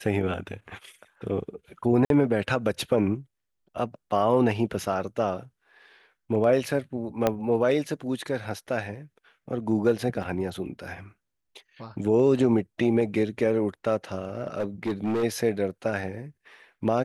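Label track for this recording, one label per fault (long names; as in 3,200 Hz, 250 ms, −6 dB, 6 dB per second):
2.050000	2.100000	drop-out 52 ms
7.270000	7.270000	click −9 dBFS
10.230000	10.230000	drop-out 2.5 ms
14.350000	15.240000	clipping −23 dBFS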